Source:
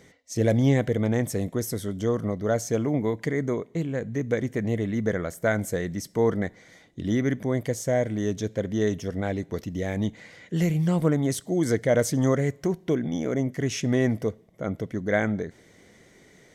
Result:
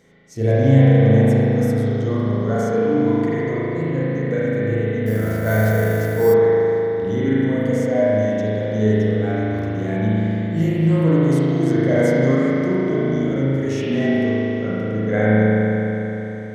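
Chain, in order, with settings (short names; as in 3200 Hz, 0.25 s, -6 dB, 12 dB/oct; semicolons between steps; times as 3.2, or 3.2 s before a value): spring tank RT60 3.9 s, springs 37 ms, chirp 45 ms, DRR -9.5 dB; 5.06–6.34 sample-rate reducer 13000 Hz, jitter 0%; harmonic-percussive split percussive -8 dB; gain -1.5 dB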